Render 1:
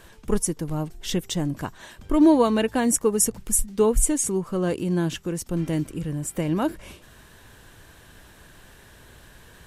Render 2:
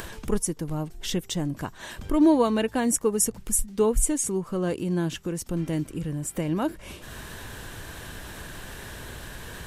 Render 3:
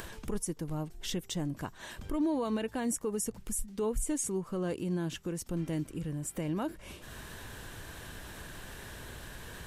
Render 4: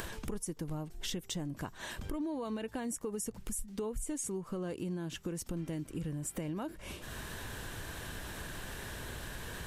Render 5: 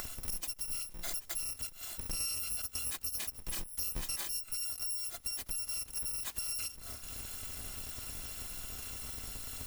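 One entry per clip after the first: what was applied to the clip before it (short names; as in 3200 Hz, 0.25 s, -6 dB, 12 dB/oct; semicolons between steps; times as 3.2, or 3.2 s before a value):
upward compressor, threshold -24 dBFS; gain -2.5 dB
limiter -18 dBFS, peak gain reduction 8.5 dB; gain -6 dB
compressor, threshold -37 dBFS, peak gain reduction 10 dB; gain +2.5 dB
FFT order left unsorted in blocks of 256 samples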